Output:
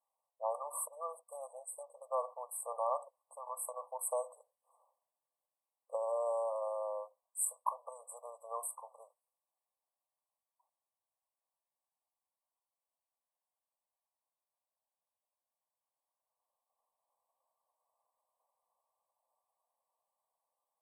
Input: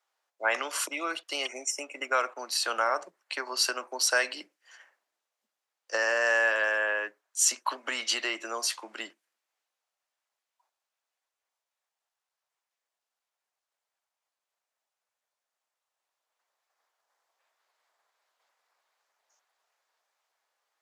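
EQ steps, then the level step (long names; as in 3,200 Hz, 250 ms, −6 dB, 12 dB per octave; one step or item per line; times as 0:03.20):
linear-phase brick-wall high-pass 460 Hz
linear-phase brick-wall band-stop 1,200–7,700 Hz
−4.5 dB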